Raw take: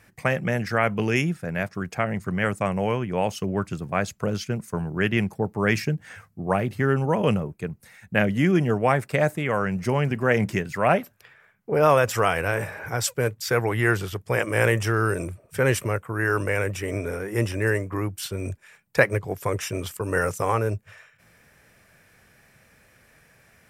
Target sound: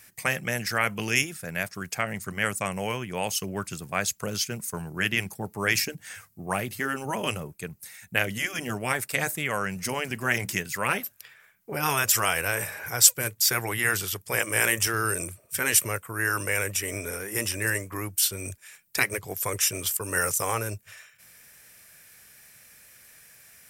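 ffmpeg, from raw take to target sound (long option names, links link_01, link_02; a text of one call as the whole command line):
ffmpeg -i in.wav -af "afftfilt=real='re*lt(hypot(re,im),0.631)':imag='im*lt(hypot(re,im),0.631)':win_size=1024:overlap=0.75,crystalizer=i=8:c=0,volume=-7.5dB" out.wav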